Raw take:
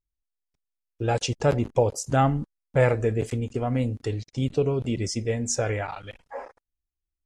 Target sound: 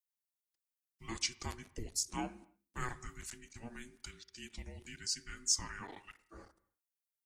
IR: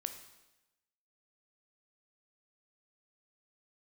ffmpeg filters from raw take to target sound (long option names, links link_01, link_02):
-filter_complex "[0:a]aderivative,afreqshift=-490,asplit=2[link_01][link_02];[1:a]atrim=start_sample=2205,afade=type=out:start_time=0.35:duration=0.01,atrim=end_sample=15876,lowpass=2300[link_03];[link_02][link_03]afir=irnorm=-1:irlink=0,volume=-5dB[link_04];[link_01][link_04]amix=inputs=2:normalize=0,volume=-1dB"